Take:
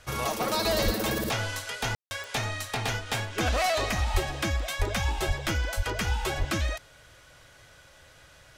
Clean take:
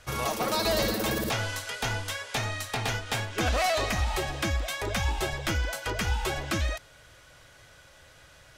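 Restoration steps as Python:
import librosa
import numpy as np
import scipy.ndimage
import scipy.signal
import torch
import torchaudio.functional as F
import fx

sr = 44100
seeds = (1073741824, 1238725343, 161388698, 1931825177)

y = fx.fix_declick_ar(x, sr, threshold=10.0)
y = fx.fix_deplosive(y, sr, at_s=(0.84, 4.13, 4.78, 5.27, 5.76, 6.38))
y = fx.fix_ambience(y, sr, seeds[0], print_start_s=7.82, print_end_s=8.32, start_s=1.95, end_s=2.11)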